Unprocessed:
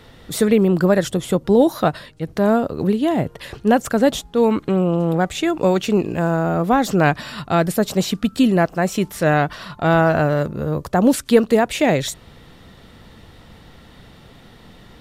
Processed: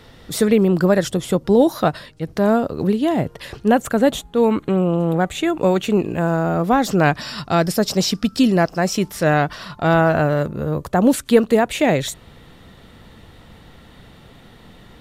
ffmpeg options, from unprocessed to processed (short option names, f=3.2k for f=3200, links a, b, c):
-af "asetnsamples=n=441:p=0,asendcmd='3.68 equalizer g -8;6.28 equalizer g 2.5;7.21 equalizer g 13;8.95 equalizer g 4.5;9.94 equalizer g -4',equalizer=f=5.2k:t=o:w=0.37:g=3"